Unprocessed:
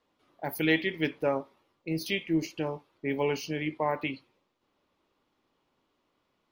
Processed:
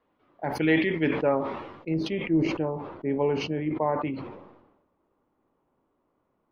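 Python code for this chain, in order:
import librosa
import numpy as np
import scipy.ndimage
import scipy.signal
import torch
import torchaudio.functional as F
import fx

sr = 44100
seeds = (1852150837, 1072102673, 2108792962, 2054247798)

y = fx.lowpass(x, sr, hz=fx.steps((0.0, 2000.0), (1.94, 1100.0)), slope=12)
y = fx.sustainer(y, sr, db_per_s=55.0)
y = y * librosa.db_to_amplitude(3.5)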